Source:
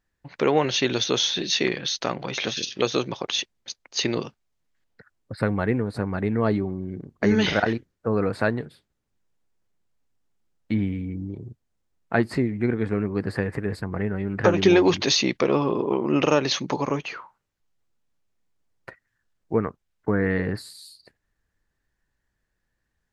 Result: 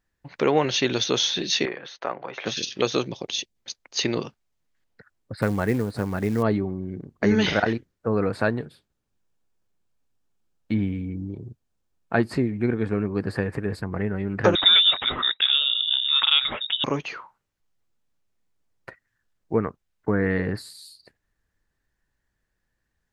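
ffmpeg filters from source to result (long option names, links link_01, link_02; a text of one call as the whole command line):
ffmpeg -i in.wav -filter_complex "[0:a]asettb=1/sr,asplit=3[link_01][link_02][link_03];[link_01]atrim=end=1.654[link_04];[link_02]atrim=start=1.65:end=2.46,asetpts=PTS-STARTPTS,afade=type=in:duration=0.004:curve=qsin,afade=type=out:start_time=0.806:duration=0.004:curve=qsin,acrossover=split=400 2100:gain=0.178 1 0.1[link_05][link_06][link_07];[link_05][link_06][link_07]amix=inputs=3:normalize=0[link_08];[link_03]atrim=start=2.456[link_09];[link_04][link_08]acrossfade=duration=0.004:curve1=hsin:curve2=qsin[link_10];[link_10][link_09]acrossfade=duration=0.004:curve1=qsin:curve2=hsin,asplit=3[link_11][link_12][link_13];[link_11]afade=type=out:start_time=3.07:duration=0.02[link_14];[link_12]equalizer=frequency=1300:width=0.95:gain=-13.5,afade=type=in:start_time=3.07:duration=0.02,afade=type=out:start_time=3.55:duration=0.02[link_15];[link_13]afade=type=in:start_time=3.55:duration=0.02[link_16];[link_14][link_15][link_16]amix=inputs=3:normalize=0,asettb=1/sr,asplit=3[link_17][link_18][link_19];[link_17]atrim=end=5.424[link_20];[link_18]atrim=start=5.42:end=6.43,asetpts=PTS-STARTPTS,afade=type=in:duration=0.004:curve=qsin,afade=type=out:start_time=1.006:duration=0.004:curve=qsin,acrusher=bits=6:mode=log:mix=0:aa=0.000001[link_21];[link_19]atrim=start=6.426[link_22];[link_20][link_21]acrossfade=duration=0.004:curve1=hsin:curve2=qsin[link_23];[link_23][link_22]acrossfade=duration=0.004:curve1=qsin:curve2=hsin,asettb=1/sr,asplit=3[link_24][link_25][link_26];[link_24]atrim=end=8.384[link_27];[link_25]atrim=start=8.38:end=13.81,asetpts=PTS-STARTPTS,afade=type=in:duration=0.004:curve=qsin,afade=type=out:start_time=5.426:duration=0.004:curve=qsin,bandreject=frequency=2000:width=12[link_28];[link_26]atrim=start=13.806[link_29];[link_27][link_28]acrossfade=duration=0.004:curve1=hsin:curve2=qsin[link_30];[link_30][link_29]acrossfade=duration=0.004:curve1=qsin:curve2=hsin,asettb=1/sr,asplit=3[link_31][link_32][link_33];[link_31]atrim=end=14.554[link_34];[link_32]atrim=start=14.55:end=16.84,asetpts=PTS-STARTPTS,afade=type=in:duration=0.004:curve=qsin,afade=type=out:start_time=2.286:duration=0.004:curve=qsin,lowpass=frequency=3300:width_type=q:width=0.5098,lowpass=frequency=3300:width_type=q:width=0.6013,lowpass=frequency=3300:width_type=q:width=0.9,lowpass=frequency=3300:width_type=q:width=2.563,afreqshift=-3900[link_35];[link_33]atrim=start=16.836[link_36];[link_34][link_35]acrossfade=duration=0.004:curve1=hsin:curve2=qsin[link_37];[link_37][link_36]acrossfade=duration=0.004:curve1=qsin:curve2=hsin" out.wav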